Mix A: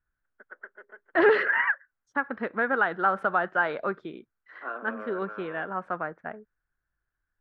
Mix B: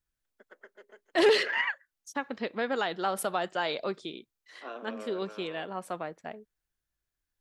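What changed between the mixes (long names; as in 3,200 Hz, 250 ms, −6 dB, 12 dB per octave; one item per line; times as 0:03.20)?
second voice: add low-shelf EQ 220 Hz −4.5 dB
master: remove low-pass with resonance 1,500 Hz, resonance Q 4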